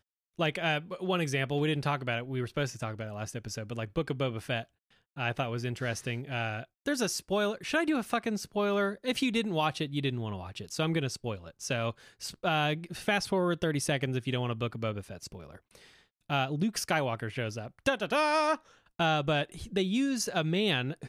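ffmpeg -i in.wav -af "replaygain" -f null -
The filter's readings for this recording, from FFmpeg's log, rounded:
track_gain = +11.3 dB
track_peak = 0.143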